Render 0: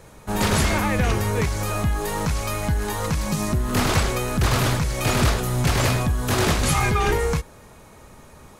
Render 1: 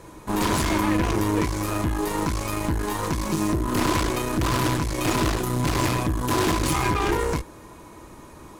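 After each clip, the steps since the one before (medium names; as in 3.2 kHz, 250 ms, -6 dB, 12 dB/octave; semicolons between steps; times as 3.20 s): one-sided clip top -33 dBFS, bottom -16 dBFS; small resonant body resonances 320/1000 Hz, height 14 dB, ringing for 70 ms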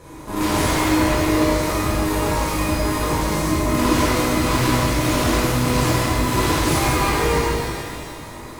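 in parallel at -2 dB: peak limiter -23.5 dBFS, peak gain reduction 12 dB; on the sum: pitch-shifted reverb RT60 2.2 s, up +12 st, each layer -8 dB, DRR -7.5 dB; trim -6.5 dB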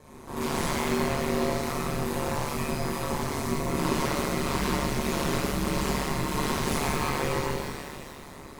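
ring modulator 72 Hz; trim -6 dB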